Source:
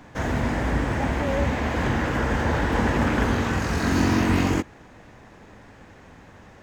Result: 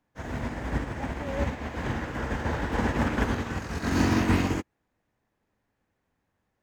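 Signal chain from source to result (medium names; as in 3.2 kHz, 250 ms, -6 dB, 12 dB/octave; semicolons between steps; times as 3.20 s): added noise pink -60 dBFS; upward expansion 2.5:1, over -38 dBFS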